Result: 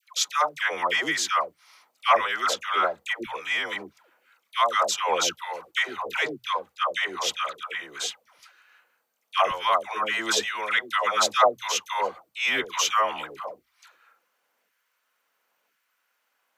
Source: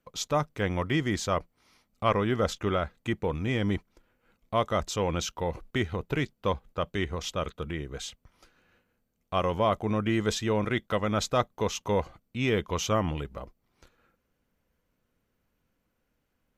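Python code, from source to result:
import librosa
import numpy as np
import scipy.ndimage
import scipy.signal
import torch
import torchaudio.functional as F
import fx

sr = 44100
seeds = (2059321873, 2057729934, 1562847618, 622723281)

y = fx.filter_lfo_highpass(x, sr, shape='saw_down', hz=0.96, low_hz=700.0, high_hz=1600.0, q=1.1)
y = fx.hum_notches(y, sr, base_hz=60, count=2)
y = fx.dispersion(y, sr, late='lows', ms=143.0, hz=690.0)
y = F.gain(torch.from_numpy(y), 8.5).numpy()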